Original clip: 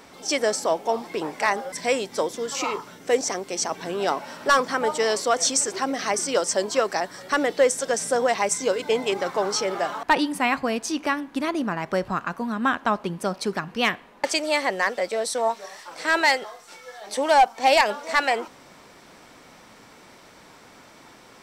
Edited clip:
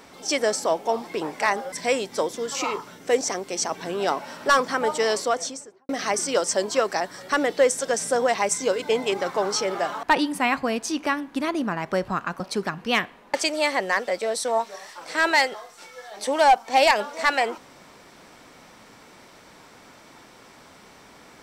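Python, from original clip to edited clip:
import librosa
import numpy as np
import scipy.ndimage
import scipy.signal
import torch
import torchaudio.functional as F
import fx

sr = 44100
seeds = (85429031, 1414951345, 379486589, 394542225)

y = fx.studio_fade_out(x, sr, start_s=5.12, length_s=0.77)
y = fx.edit(y, sr, fx.cut(start_s=12.4, length_s=0.9), tone=tone)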